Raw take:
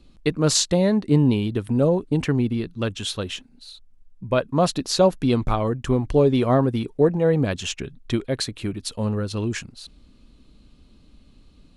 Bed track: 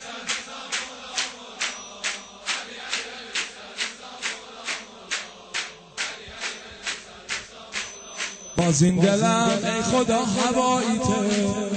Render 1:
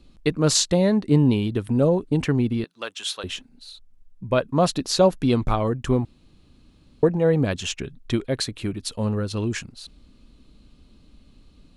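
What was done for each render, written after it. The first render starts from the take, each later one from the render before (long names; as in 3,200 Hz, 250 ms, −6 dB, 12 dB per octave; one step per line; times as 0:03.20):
0:02.64–0:03.24: high-pass filter 710 Hz
0:06.05–0:07.03: fill with room tone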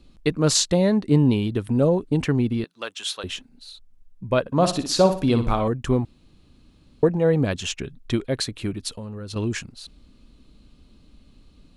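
0:04.40–0:05.68: flutter between parallel walls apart 10.2 metres, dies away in 0.39 s
0:08.89–0:09.36: downward compressor 16 to 1, threshold −30 dBFS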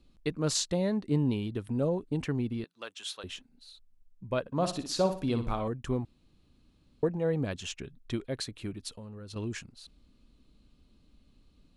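level −10 dB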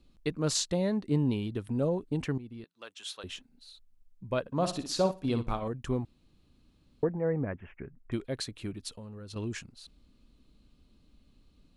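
0:02.38–0:03.29: fade in, from −15.5 dB
0:05.11–0:05.74: noise gate −33 dBFS, range −9 dB
0:07.04–0:08.12: elliptic low-pass filter 2,100 Hz, stop band 50 dB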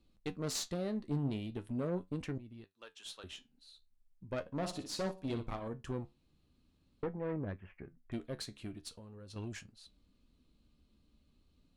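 tube saturation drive 26 dB, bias 0.55
flanger 0.41 Hz, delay 9.2 ms, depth 5.2 ms, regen +64%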